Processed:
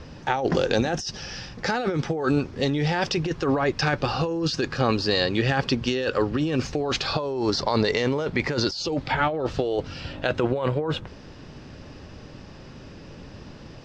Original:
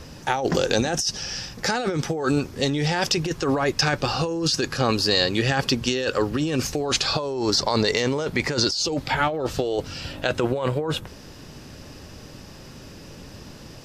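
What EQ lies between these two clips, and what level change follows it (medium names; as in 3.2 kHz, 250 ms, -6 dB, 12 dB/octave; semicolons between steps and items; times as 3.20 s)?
distance through air 150 m; 0.0 dB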